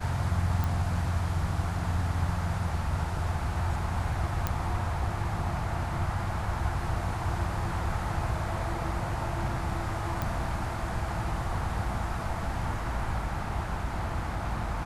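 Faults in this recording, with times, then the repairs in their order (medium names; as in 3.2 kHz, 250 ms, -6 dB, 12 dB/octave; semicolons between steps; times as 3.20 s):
0.64 s: pop
4.47 s: pop -13 dBFS
10.22 s: pop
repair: de-click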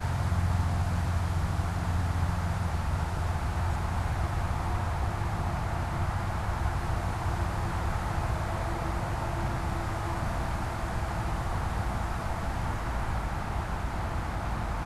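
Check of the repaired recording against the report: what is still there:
nothing left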